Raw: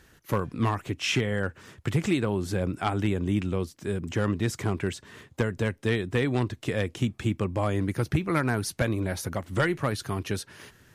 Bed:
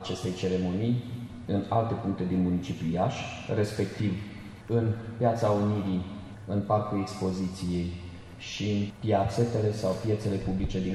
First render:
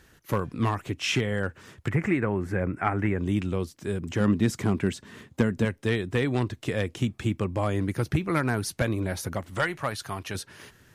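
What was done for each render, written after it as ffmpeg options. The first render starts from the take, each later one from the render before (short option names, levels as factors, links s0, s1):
-filter_complex "[0:a]asettb=1/sr,asplit=3[s0][s1][s2];[s0]atrim=end=1.884[s3];[s1]atrim=start=1.88:end=3.19,asetpts=PTS-STARTPTS,afade=t=in:d=0.004:c=qsin,afade=t=out:st=1.306:d=0.004:c=qsin,highshelf=f=2700:t=q:w=3:g=-11[s4];[s2]atrim=start=3.186[s5];[s3][s4]acrossfade=d=0.004:c1=hsin:c2=qsin[s6];[s6][s5]acrossfade=d=0.004:c1=qsin:c2=hsin,asettb=1/sr,asplit=3[s7][s8][s9];[s7]atrim=end=4.204[s10];[s8]atrim=start=4.2:end=5.65,asetpts=PTS-STARTPTS,afade=t=in:d=0.004:c=qsin,afade=t=out:st=1.446:d=0.004:c=qsin,equalizer=f=220:t=o:w=0.77:g=8[s11];[s9]atrim=start=5.646[s12];[s10][s11]acrossfade=d=0.004:c1=hsin:c2=qsin[s13];[s13][s12]acrossfade=d=0.004:c1=qsin:c2=hsin,asettb=1/sr,asplit=3[s14][s15][s16];[s14]atrim=end=9.504[s17];[s15]atrim=start=9.5:end=10.35,asetpts=PTS-STARTPTS,afade=t=in:d=0.004:c=qsin,afade=t=out:st=0.846:d=0.004:c=qsin,lowshelf=f=520:t=q:w=1.5:g=-6[s18];[s16]atrim=start=10.346[s19];[s17][s18]acrossfade=d=0.004:c1=hsin:c2=qsin[s20];[s20][s19]acrossfade=d=0.004:c1=qsin:c2=hsin"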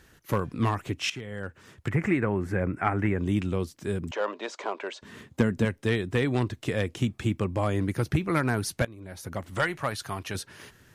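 -filter_complex "[0:a]asettb=1/sr,asplit=3[s0][s1][s2];[s0]atrim=end=4.114[s3];[s1]atrim=start=4.11:end=5.02,asetpts=PTS-STARTPTS,afade=t=in:d=0.004:c=qsin,afade=t=out:st=0.906:d=0.004:c=qsin,highpass=f=470:w=0.5412,highpass=f=470:w=1.3066,equalizer=f=590:t=q:w=4:g=8,equalizer=f=960:t=q:w=4:g=7,equalizer=f=1900:t=q:w=4:g=-4,equalizer=f=5300:t=q:w=4:g=-4,lowpass=f=5900:w=0.5412,lowpass=f=5900:w=1.3066[s4];[s2]atrim=start=5.016[s5];[s3][s4]acrossfade=d=0.004:c1=hsin:c2=qsin[s6];[s6][s5]acrossfade=d=0.004:c1=qsin:c2=hsin,asplit=3[s7][s8][s9];[s7]atrim=end=1.1,asetpts=PTS-STARTPTS,afade=t=out:st=1.096:d=0.004:c=hsin:silence=0.141254[s10];[s8]atrim=start=1.1:end=8.85,asetpts=PTS-STARTPTS,afade=t=in:d=0.94:silence=0.141254,afade=t=out:st=7.746:d=0.004:c=hsin:silence=0.112202[s11];[s9]atrim=start=8.85,asetpts=PTS-STARTPTS,afade=t=in:d=0.61:c=qua:silence=0.112202[s12];[s10][s11][s12]concat=n=3:v=0:a=1"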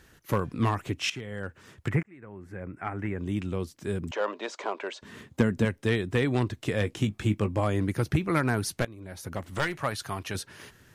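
-filter_complex "[0:a]asettb=1/sr,asplit=3[s0][s1][s2];[s0]atrim=end=6.794[s3];[s1]atrim=start=6.79:end=7.6,asetpts=PTS-STARTPTS,afade=t=in:d=0.004:c=qsin,afade=t=out:st=0.806:d=0.004:c=qsin,asplit=2[s4][s5];[s5]adelay=19,volume=0.316[s6];[s4][s6]amix=inputs=2:normalize=0,atrim=end_sample=35721[s7];[s2]atrim=start=7.596[s8];[s3][s7]acrossfade=d=0.004:c1=hsin:c2=qsin[s9];[s9][s8]acrossfade=d=0.004:c1=qsin:c2=hsin,asettb=1/sr,asplit=3[s10][s11][s12];[s10]atrim=end=8.724[s13];[s11]atrim=start=8.72:end=9.84,asetpts=PTS-STARTPTS,afade=t=in:d=0.004:c=qsin,afade=t=out:st=1.116:d=0.004:c=qsin,aeval=exprs='clip(val(0),-1,0.0266)':c=same[s14];[s12]atrim=start=9.836[s15];[s13][s14]acrossfade=d=0.004:c1=hsin:c2=qsin[s16];[s16][s15]acrossfade=d=0.004:c1=qsin:c2=hsin,asplit=2[s17][s18];[s17]atrim=end=2.03,asetpts=PTS-STARTPTS,afade=t=out:st=2.026:d=0.004:c=hsin[s19];[s18]atrim=start=2.03,asetpts=PTS-STARTPTS,afade=t=in:d=2.13[s20];[s19][s20]concat=n=2:v=0:a=1"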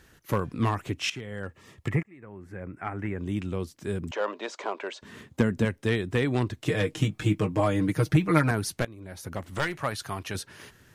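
-filter_complex "[0:a]asettb=1/sr,asplit=3[s0][s1][s2];[s0]atrim=end=1.454[s3];[s1]atrim=start=1.45:end=2.23,asetpts=PTS-STARTPTS,afade=t=in:d=0.004:c=qsin,afade=t=out:st=0.776:d=0.004:c=qsin,asuperstop=centerf=1500:order=8:qfactor=6.3[s4];[s2]atrim=start=2.226[s5];[s3][s4]acrossfade=d=0.004:c1=hsin:c2=qsin[s6];[s6][s5]acrossfade=d=0.004:c1=qsin:c2=hsin,asettb=1/sr,asplit=3[s7][s8][s9];[s7]atrim=end=6.654[s10];[s8]atrim=start=6.65:end=8.51,asetpts=PTS-STARTPTS,afade=t=in:d=0.004:c=qsin,afade=t=out:st=1.856:d=0.004:c=qsin,aecho=1:1:6.5:0.88,atrim=end_sample=82026[s11];[s9]atrim=start=8.506[s12];[s10][s11]acrossfade=d=0.004:c1=hsin:c2=qsin[s13];[s13][s12]acrossfade=d=0.004:c1=qsin:c2=hsin"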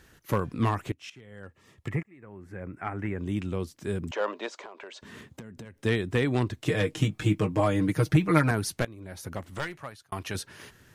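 -filter_complex "[0:a]asplit=3[s0][s1][s2];[s0]afade=t=out:st=4.48:d=0.02[s3];[s1]acompressor=threshold=0.0112:ratio=12:attack=3.2:release=140:knee=1:detection=peak,afade=t=in:st=4.48:d=0.02,afade=t=out:st=5.81:d=0.02[s4];[s2]afade=t=in:st=5.81:d=0.02[s5];[s3][s4][s5]amix=inputs=3:normalize=0,asplit=3[s6][s7][s8];[s6]atrim=end=0.92,asetpts=PTS-STARTPTS,afade=t=out:st=0.916:d=0.004:c=hsin:silence=0.112202[s9];[s7]atrim=start=0.92:end=10.12,asetpts=PTS-STARTPTS,afade=t=in:d=1.76:silence=0.112202,afade=t=out:st=8.32:d=0.88[s10];[s8]atrim=start=10.12,asetpts=PTS-STARTPTS,afade=t=in:d=0.004:c=hsin[s11];[s9][s10][s11]concat=n=3:v=0:a=1"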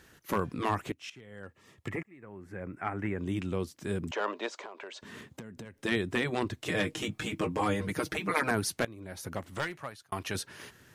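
-af "afftfilt=real='re*lt(hypot(re,im),0.355)':imag='im*lt(hypot(re,im),0.355)':win_size=1024:overlap=0.75,lowshelf=f=73:g=-10"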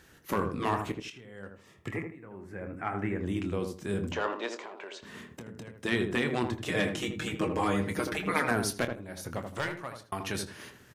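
-filter_complex "[0:a]asplit=2[s0][s1];[s1]adelay=25,volume=0.299[s2];[s0][s2]amix=inputs=2:normalize=0,asplit=2[s3][s4];[s4]adelay=80,lowpass=f=1100:p=1,volume=0.596,asplit=2[s5][s6];[s6]adelay=80,lowpass=f=1100:p=1,volume=0.26,asplit=2[s7][s8];[s8]adelay=80,lowpass=f=1100:p=1,volume=0.26,asplit=2[s9][s10];[s10]adelay=80,lowpass=f=1100:p=1,volume=0.26[s11];[s3][s5][s7][s9][s11]amix=inputs=5:normalize=0"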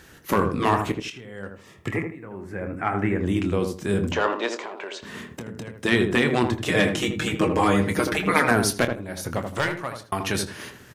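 -af "volume=2.66"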